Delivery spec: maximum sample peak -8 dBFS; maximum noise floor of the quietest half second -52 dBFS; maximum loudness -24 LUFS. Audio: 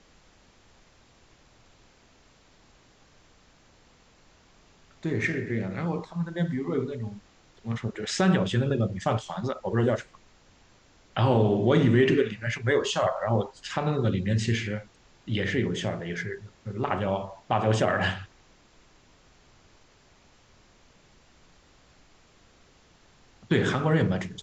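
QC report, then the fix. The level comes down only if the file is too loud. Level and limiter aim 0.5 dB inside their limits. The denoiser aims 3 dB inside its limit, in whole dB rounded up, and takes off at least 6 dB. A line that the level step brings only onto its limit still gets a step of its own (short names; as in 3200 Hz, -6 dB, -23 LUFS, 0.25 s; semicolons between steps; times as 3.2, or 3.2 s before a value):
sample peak -9.0 dBFS: OK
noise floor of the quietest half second -59 dBFS: OK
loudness -27.0 LUFS: OK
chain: none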